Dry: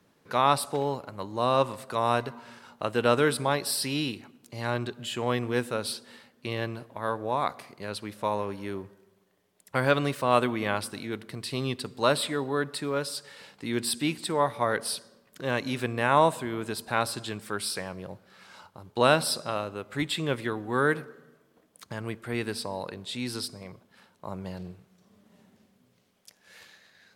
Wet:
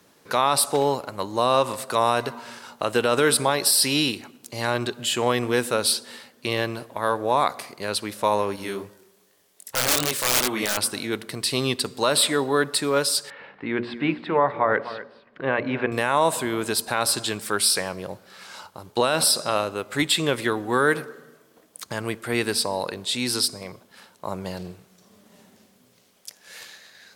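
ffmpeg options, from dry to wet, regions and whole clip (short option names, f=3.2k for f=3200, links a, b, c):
-filter_complex "[0:a]asettb=1/sr,asplit=3[a][b][c];[a]atrim=end=8.564[d];[b]atrim=start=8.56:end=10.77,asetpts=PTS-STARTPTS,afade=t=in:d=0.004:c=qsin,afade=t=out:st=2.206:d=0.004:c=qsin,highshelf=f=2.4k:g=6,flanger=delay=19:depth=6.8:speed=2.6,aeval=exprs='(mod(11.9*val(0)+1,2)-1)/11.9':c=same[e];[c]atrim=start=10.766[f];[d][e]acrossfade=d=0.004:c1=hsin:c2=qsin[g];[g][f]acrossfade=d=0.004:c1=qsin:c2=hsin,asettb=1/sr,asplit=3[h][i][j];[h]atrim=end=13.304[k];[i]atrim=start=13.3:end=15.92,asetpts=PTS-STARTPTS,afade=t=in:d=0.004:c=qsin,afade=t=out:st=2.616:d=0.004:c=qsin,lowpass=f=2.3k:w=0.5412,lowpass=f=2.3k:w=1.3066,bandreject=f=60:t=h:w=6,bandreject=f=120:t=h:w=6,bandreject=f=180:t=h:w=6,bandreject=f=240:t=h:w=6,bandreject=f=300:t=h:w=6,bandreject=f=360:t=h:w=6,bandreject=f=420:t=h:w=6,bandreject=f=480:t=h:w=6,bandreject=f=540:t=h:w=6,bandreject=f=600:t=h:w=6,aecho=1:1:252:0.158,atrim=end_sample=115542[l];[j]atrim=start=15.916[m];[k][l]acrossfade=d=0.004:c1=hsin:c2=qsin[n];[n][m]acrossfade=d=0.004:c1=qsin:c2=hsin,bass=f=250:g=-6,treble=f=4k:g=6,alimiter=limit=-16.5dB:level=0:latency=1:release=67,volume=8dB"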